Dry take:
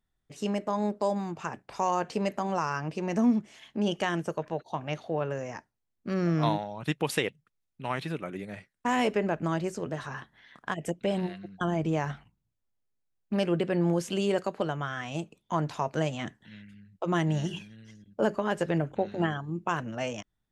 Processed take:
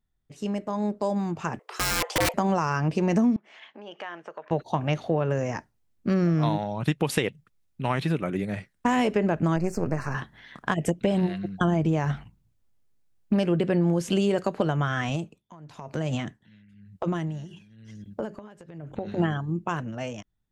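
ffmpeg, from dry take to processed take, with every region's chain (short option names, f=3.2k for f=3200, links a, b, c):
-filter_complex "[0:a]asettb=1/sr,asplit=3[a][b][c];[a]atrim=end=1.594[d];[b]atrim=start=1.59:end=2.34,asetpts=PTS-STARTPTS,afade=t=in:d=0.004:c=qsin,afade=t=out:st=0.746:d=0.004:c=qsin,afreqshift=320,aeval=exprs='(mod(15.8*val(0)+1,2)-1)/15.8':c=same[e];[c]atrim=start=2.336[f];[d][e]acrossfade=d=0.004:c1=hsin:c2=qsin[g];[g][f]acrossfade=d=0.004:c1=qsin:c2=hsin,asettb=1/sr,asplit=3[h][i][j];[h]atrim=end=3.364[k];[i]atrim=start=3.36:end=4.51,asetpts=PTS-STARTPTS,afade=t=in:d=0.004:c=qsin,afade=t=out:st=1.146:d=0.004:c=qsin,acompressor=threshold=-40dB:ratio=3:attack=3.2:release=140:knee=1:detection=peak,highpass=670,lowpass=2.5k[l];[j]atrim=start=4.506[m];[k][l]acrossfade=d=0.004:c1=hsin:c2=qsin[n];[n][m]acrossfade=d=0.004:c1=qsin:c2=hsin,asettb=1/sr,asplit=3[o][p][q];[o]atrim=end=9.564[r];[p]atrim=start=9.56:end=10.15,asetpts=PTS-STARTPTS,afade=t=in:d=0.004:c=qsin,afade=t=out:st=0.586:d=0.004:c=qsin,aeval=exprs='if(lt(val(0),0),0.447*val(0),val(0))':c=same,asuperstop=centerf=3400:order=8:qfactor=2.2[s];[q]atrim=start=10.146[t];[r][s]acrossfade=d=0.004:c1=hsin:c2=qsin[u];[u][t]acrossfade=d=0.004:c1=qsin:c2=hsin,asettb=1/sr,asplit=3[v][w][x];[v]atrim=end=15.094[y];[w]atrim=start=15.09:end=19.17,asetpts=PTS-STARTPTS,afade=t=in:d=0.004:c=qsin,afade=t=out:st=4.076:d=0.004:c=qsin,highpass=44,acompressor=threshold=-32dB:ratio=10:attack=3.2:release=140:knee=1:detection=peak,aeval=exprs='val(0)*pow(10,-19*(0.5-0.5*cos(2*PI*1*n/s))/20)':c=same[z];[x]atrim=start=19.166[aa];[y][z]acrossfade=d=0.004:c1=hsin:c2=qsin[ab];[ab][aa]acrossfade=d=0.004:c1=qsin:c2=hsin,dynaudnorm=f=140:g=21:m=11dB,lowshelf=f=260:g=7.5,acompressor=threshold=-16dB:ratio=6,volume=-3.5dB"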